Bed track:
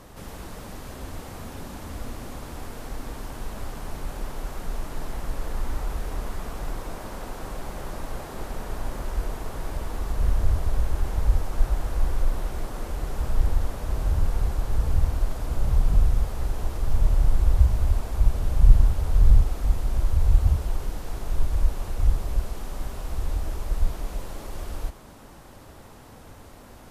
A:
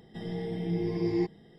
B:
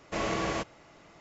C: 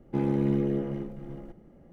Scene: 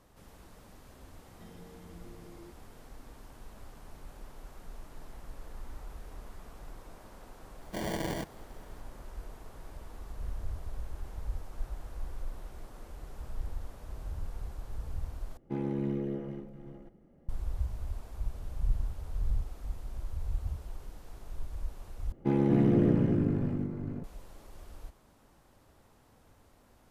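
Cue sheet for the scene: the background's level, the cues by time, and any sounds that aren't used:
bed track -15.5 dB
1.26 add A -9 dB + compressor, threshold -41 dBFS
7.61 add B -4 dB + sample-and-hold 34×
15.37 replace with C -7 dB
22.12 replace with C + echoes that change speed 0.21 s, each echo -3 st, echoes 2

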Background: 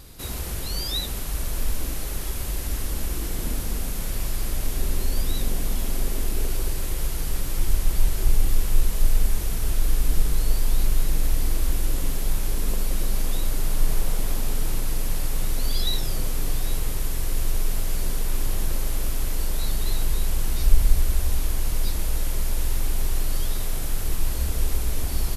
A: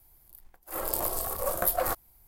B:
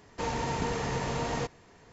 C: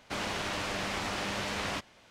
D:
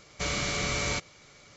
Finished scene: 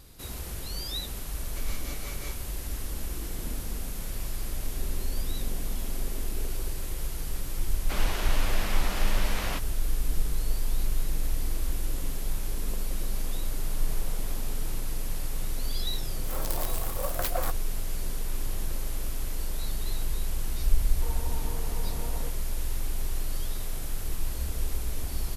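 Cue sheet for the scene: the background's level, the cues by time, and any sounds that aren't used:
background -6.5 dB
1.36 add D -11.5 dB + tremolo 5.5 Hz, depth 68%
7.79 add C -0.5 dB
15.57 add A -4 dB + tracing distortion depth 0.11 ms
20.83 add B -10 dB + LPF 1200 Hz

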